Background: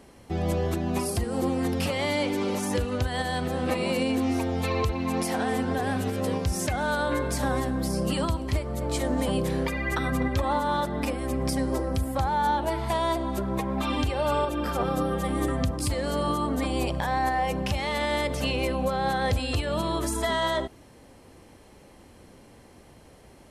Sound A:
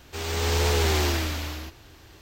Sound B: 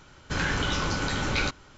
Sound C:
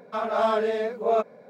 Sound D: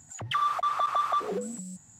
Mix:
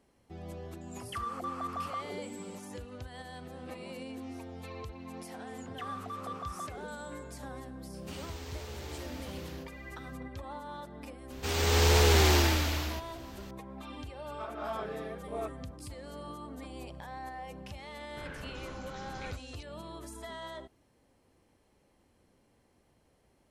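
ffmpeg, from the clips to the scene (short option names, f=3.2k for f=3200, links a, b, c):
-filter_complex "[4:a]asplit=2[a][b];[1:a]asplit=2[c][d];[0:a]volume=-17dB[e];[a]asuperstop=centerf=3700:order=4:qfactor=7.6[f];[c]acompressor=threshold=-30dB:ratio=6:attack=3.2:release=140:knee=1:detection=peak[g];[3:a]equalizer=f=1.9k:w=0.57:g=5[h];[2:a]acrossover=split=3800[i][j];[j]adelay=380[k];[i][k]amix=inputs=2:normalize=0[l];[f]atrim=end=1.99,asetpts=PTS-STARTPTS,volume=-11dB,afade=t=in:d=0.004:c=hsin,afade=t=out:st=1.986:d=0.004:c=hsin,adelay=810[m];[b]atrim=end=1.99,asetpts=PTS-STARTPTS,volume=-14.5dB,afade=t=in:d=0.004:c=hsin,afade=t=out:st=1.986:d=0.004:c=hsin,adelay=5470[n];[g]atrim=end=2.21,asetpts=PTS-STARTPTS,volume=-11dB,afade=t=in:d=0.004:c=hsin,afade=t=out:st=2.206:d=0.004:c=hsin,adelay=350154S[o];[d]atrim=end=2.21,asetpts=PTS-STARTPTS,afade=t=in:d=0.004:c=hsin,afade=t=out:st=2.206:d=0.004:c=hsin,adelay=498330S[p];[h]atrim=end=1.49,asetpts=PTS-STARTPTS,volume=-17dB,afade=t=in:d=0.004:c=hsin,afade=t=out:st=1.486:d=0.004:c=hsin,adelay=14260[q];[l]atrim=end=1.77,asetpts=PTS-STARTPTS,volume=-18dB,afade=t=in:d=0.004:c=hsin,afade=t=out:st=1.766:d=0.004:c=hsin,adelay=17860[r];[e][m][n][o][p][q][r]amix=inputs=7:normalize=0"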